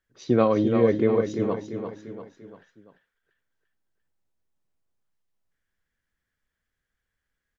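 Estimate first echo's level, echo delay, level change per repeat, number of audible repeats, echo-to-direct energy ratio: -7.5 dB, 0.344 s, -6.5 dB, 4, -6.5 dB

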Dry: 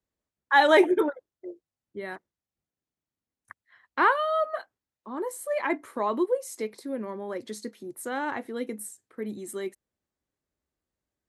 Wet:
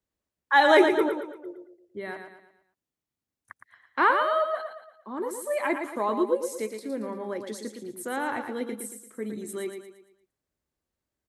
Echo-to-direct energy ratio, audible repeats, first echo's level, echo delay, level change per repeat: -6.0 dB, 4, -7.0 dB, 0.114 s, -7.5 dB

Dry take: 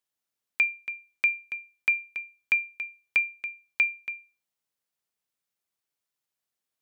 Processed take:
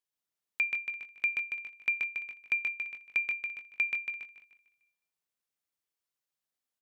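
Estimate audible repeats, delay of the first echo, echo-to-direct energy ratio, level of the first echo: 6, 0.13 s, -2.0 dB, -3.5 dB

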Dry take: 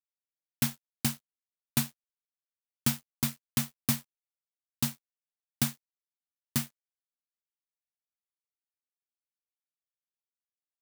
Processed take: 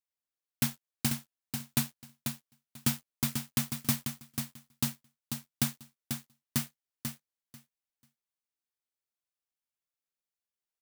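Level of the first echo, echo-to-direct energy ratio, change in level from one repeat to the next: -6.5 dB, -6.5 dB, -16.0 dB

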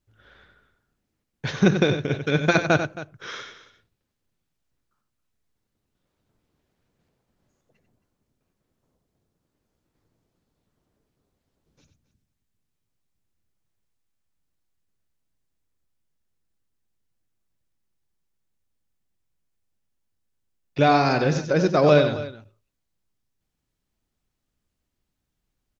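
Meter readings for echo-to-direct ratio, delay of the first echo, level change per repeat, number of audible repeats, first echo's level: -8.0 dB, 93 ms, no steady repeat, 2, -9.0 dB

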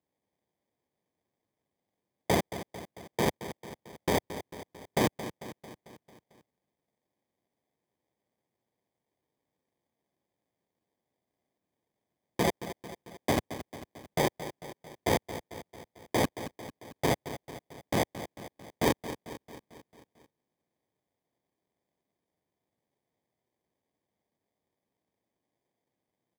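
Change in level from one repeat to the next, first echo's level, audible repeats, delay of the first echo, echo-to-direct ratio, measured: -4.5 dB, -12.5 dB, 5, 0.223 s, -10.5 dB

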